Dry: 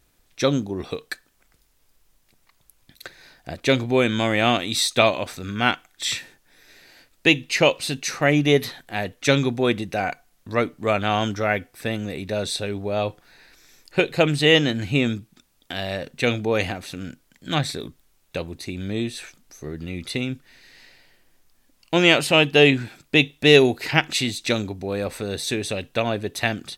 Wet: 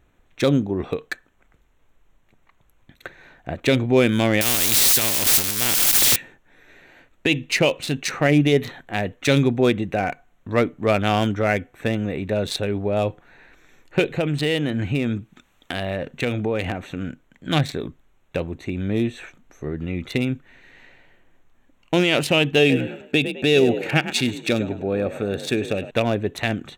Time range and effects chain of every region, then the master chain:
4.41–6.16 s: zero-crossing glitches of -18.5 dBFS + bass shelf 350 Hz +9 dB + spectrum-flattening compressor 4:1
14.10–17.04 s: compression 2.5:1, threshold -24 dBFS + tape noise reduction on one side only encoder only
22.59–25.91 s: comb of notches 1 kHz + frequency-shifting echo 103 ms, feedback 36%, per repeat +43 Hz, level -13 dB
whole clip: local Wiener filter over 9 samples; dynamic bell 1.1 kHz, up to -5 dB, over -33 dBFS, Q 0.88; peak limiter -11.5 dBFS; trim +4.5 dB

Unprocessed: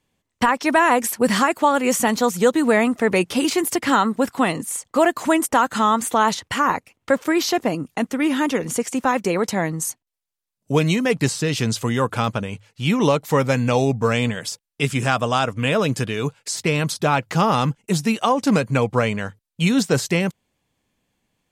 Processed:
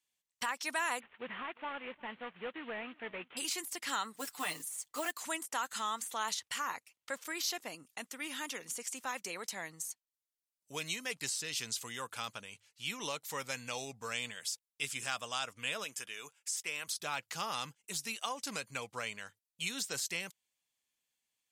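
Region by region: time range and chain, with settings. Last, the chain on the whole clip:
1.00–3.37 s: CVSD coder 16 kbps + delay 354 ms -23.5 dB
4.14–5.11 s: de-esser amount 30% + comb 6.7 ms, depth 86% + modulation noise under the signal 24 dB
15.84–16.88 s: high-pass 450 Hz 6 dB/octave + peaking EQ 4.2 kHz -13 dB 0.34 oct
whole clip: pre-emphasis filter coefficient 0.97; de-esser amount 45%; treble shelf 8.5 kHz -9 dB; trim -2.5 dB

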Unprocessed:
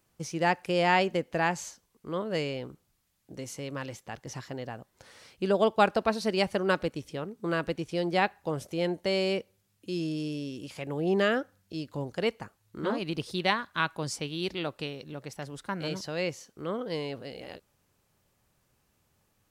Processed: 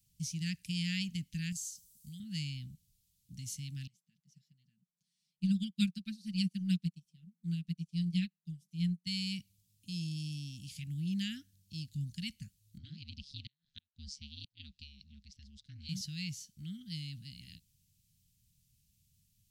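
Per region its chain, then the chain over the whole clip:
1.52–2.20 s: FFT filter 180 Hz 0 dB, 680 Hz -18 dB, 8.4 kHz +14 dB + compression 3:1, threshold -42 dBFS
3.87–9.07 s: resonant low shelf 120 Hz -13 dB, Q 3 + comb 5.8 ms, depth 70% + upward expansion 2.5:1, over -34 dBFS
12.78–15.89 s: ring modulator 72 Hz + four-pole ladder low-pass 6 kHz, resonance 35% + inverted gate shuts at -25 dBFS, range -42 dB
whole clip: inverse Chebyshev band-stop 420–1100 Hz, stop band 60 dB; peaking EQ 2.3 kHz -8 dB 1.1 oct; trim +1 dB

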